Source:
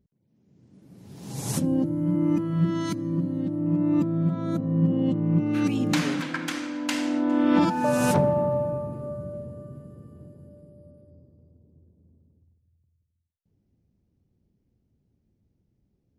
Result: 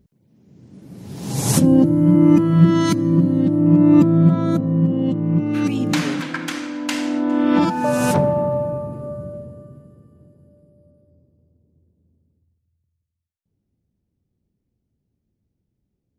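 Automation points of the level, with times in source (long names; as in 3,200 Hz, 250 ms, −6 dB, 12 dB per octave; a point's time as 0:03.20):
0:04.33 +11 dB
0:04.88 +4 dB
0:09.24 +4 dB
0:10.10 −3.5 dB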